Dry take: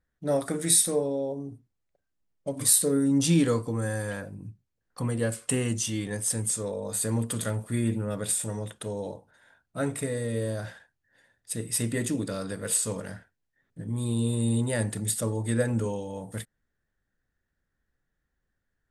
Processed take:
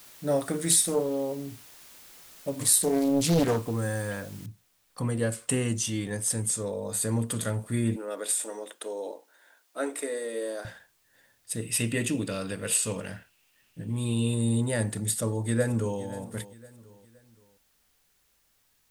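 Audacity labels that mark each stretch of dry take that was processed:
0.710000	3.710000	highs frequency-modulated by the lows depth 0.95 ms
4.460000	4.460000	noise floor change −51 dB −69 dB
7.960000	10.650000	Butterworth high-pass 290 Hz
11.620000	14.340000	parametric band 2,700 Hz +13 dB 0.43 octaves
15.080000	16.010000	delay throw 520 ms, feedback 40%, level −16.5 dB

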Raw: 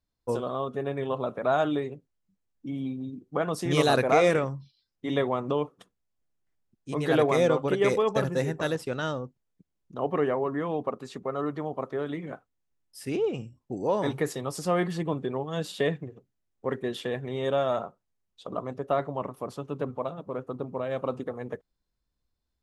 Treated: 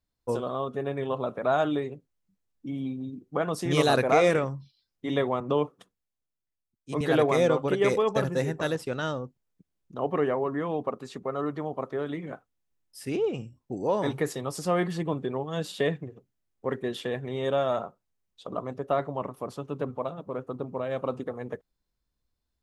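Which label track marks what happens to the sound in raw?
5.400000	7.010000	multiband upward and downward expander depth 40%

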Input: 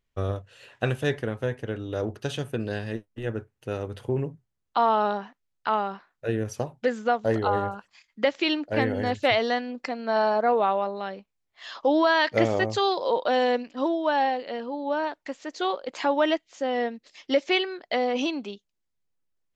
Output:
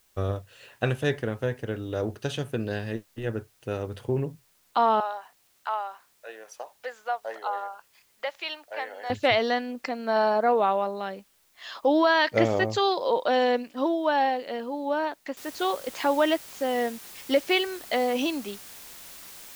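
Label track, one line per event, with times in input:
5.000000	9.100000	four-pole ladder high-pass 570 Hz, resonance 30%
15.370000	15.370000	noise floor change −65 dB −45 dB

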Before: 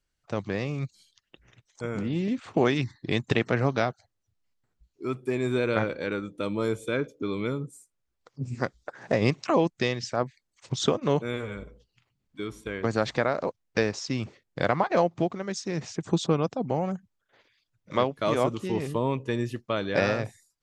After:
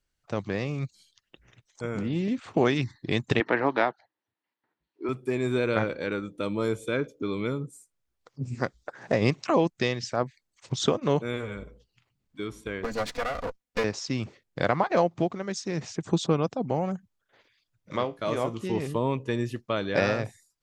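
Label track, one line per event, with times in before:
3.400000	5.090000	loudspeaker in its box 280–4,000 Hz, peaks and dips at 310 Hz +7 dB, 920 Hz +9 dB, 1,800 Hz +7 dB
12.840000	13.840000	lower of the sound and its delayed copy delay 4.1 ms
17.960000	18.610000	tuned comb filter 57 Hz, decay 0.25 s

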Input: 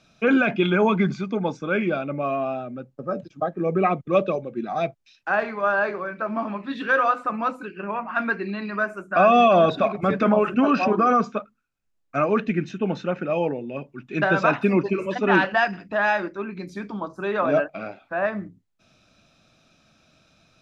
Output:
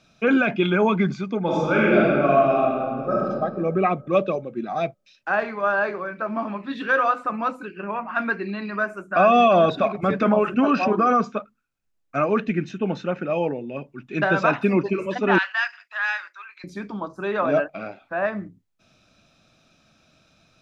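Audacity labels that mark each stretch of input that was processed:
1.420000	3.290000	thrown reverb, RT60 1.9 s, DRR −5.5 dB
15.380000	16.640000	high-pass filter 1,200 Hz 24 dB per octave

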